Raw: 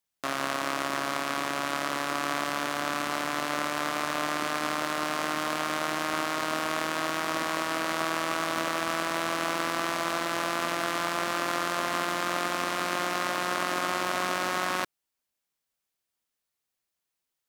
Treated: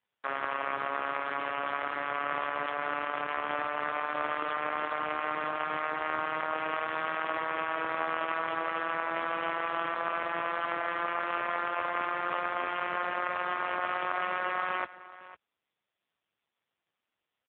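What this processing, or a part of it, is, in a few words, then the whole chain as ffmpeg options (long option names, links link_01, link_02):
satellite phone: -af "highpass=330,lowpass=3200,aecho=1:1:502:0.141" -ar 8000 -c:a libopencore_amrnb -b:a 5150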